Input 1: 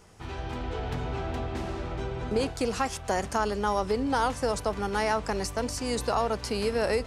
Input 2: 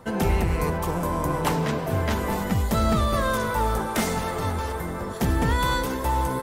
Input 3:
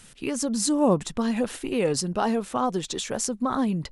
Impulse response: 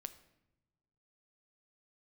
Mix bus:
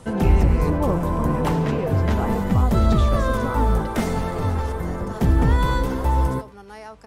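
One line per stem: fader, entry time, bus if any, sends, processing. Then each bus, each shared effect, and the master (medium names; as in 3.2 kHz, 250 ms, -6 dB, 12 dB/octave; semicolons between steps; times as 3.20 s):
-12.0 dB, 1.75 s, no send, no echo send, harmonic-percussive split percussive -4 dB; peaking EQ 12 kHz +7 dB 0.42 oct
-3.5 dB, 0.00 s, send -4 dB, echo send -17.5 dB, tilt EQ -2 dB/octave
-4.0 dB, 0.00 s, no send, no echo send, low-pass that closes with the level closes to 1.8 kHz, closed at -22.5 dBFS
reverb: on, RT60 1.0 s, pre-delay 7 ms
echo: delay 107 ms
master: none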